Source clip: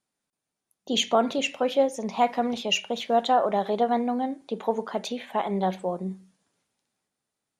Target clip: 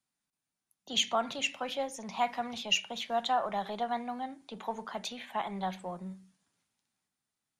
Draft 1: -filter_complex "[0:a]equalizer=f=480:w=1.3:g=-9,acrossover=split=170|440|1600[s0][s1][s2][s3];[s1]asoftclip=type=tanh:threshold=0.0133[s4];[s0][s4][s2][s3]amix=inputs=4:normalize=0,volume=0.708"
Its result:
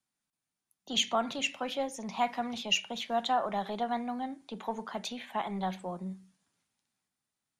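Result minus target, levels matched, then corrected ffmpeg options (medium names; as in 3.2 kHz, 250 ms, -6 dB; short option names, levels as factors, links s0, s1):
saturation: distortion -6 dB
-filter_complex "[0:a]equalizer=f=480:w=1.3:g=-9,acrossover=split=170|440|1600[s0][s1][s2][s3];[s1]asoftclip=type=tanh:threshold=0.00376[s4];[s0][s4][s2][s3]amix=inputs=4:normalize=0,volume=0.708"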